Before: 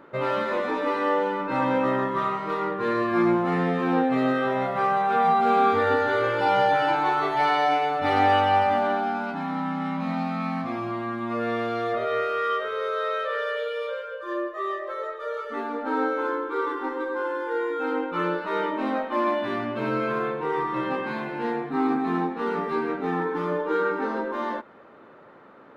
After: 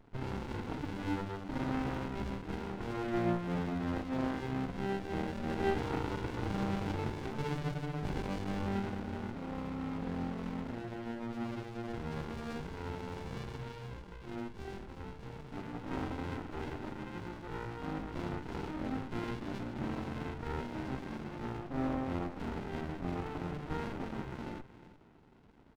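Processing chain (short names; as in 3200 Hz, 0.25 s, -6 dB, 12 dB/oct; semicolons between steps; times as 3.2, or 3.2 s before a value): speakerphone echo 0.36 s, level -14 dB; running maximum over 65 samples; gain -8 dB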